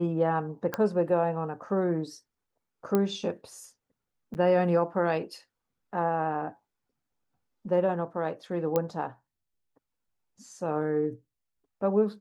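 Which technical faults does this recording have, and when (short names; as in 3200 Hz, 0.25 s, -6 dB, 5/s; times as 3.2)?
0.74 pop -15 dBFS
2.95 pop -13 dBFS
4.34–4.35 gap 9.3 ms
8.76 pop -13 dBFS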